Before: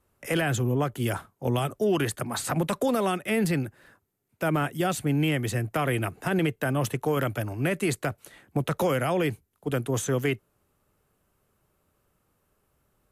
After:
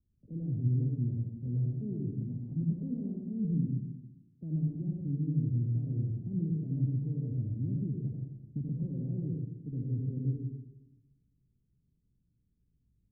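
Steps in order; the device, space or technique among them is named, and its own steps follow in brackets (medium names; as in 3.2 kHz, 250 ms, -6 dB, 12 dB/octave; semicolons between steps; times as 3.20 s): club heard from the street (peak limiter -19.5 dBFS, peak gain reduction 4.5 dB; low-pass 240 Hz 24 dB/octave; reverberation RT60 0.95 s, pre-delay 71 ms, DRR 0.5 dB); trim -4 dB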